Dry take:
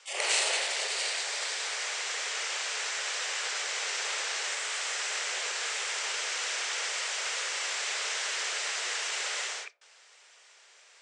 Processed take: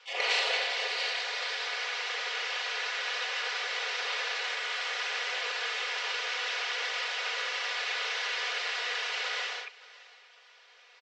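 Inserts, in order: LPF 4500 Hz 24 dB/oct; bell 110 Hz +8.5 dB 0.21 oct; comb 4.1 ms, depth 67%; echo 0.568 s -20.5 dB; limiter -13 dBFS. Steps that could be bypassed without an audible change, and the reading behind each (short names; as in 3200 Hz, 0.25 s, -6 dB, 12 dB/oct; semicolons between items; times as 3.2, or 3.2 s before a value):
bell 110 Hz: input band starts at 320 Hz; limiter -13 dBFS: input peak -14.5 dBFS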